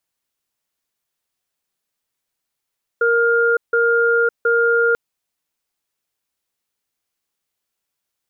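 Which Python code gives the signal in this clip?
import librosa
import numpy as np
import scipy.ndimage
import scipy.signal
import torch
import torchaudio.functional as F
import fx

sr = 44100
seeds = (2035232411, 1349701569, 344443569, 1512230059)

y = fx.cadence(sr, length_s=1.94, low_hz=466.0, high_hz=1410.0, on_s=0.56, off_s=0.16, level_db=-15.5)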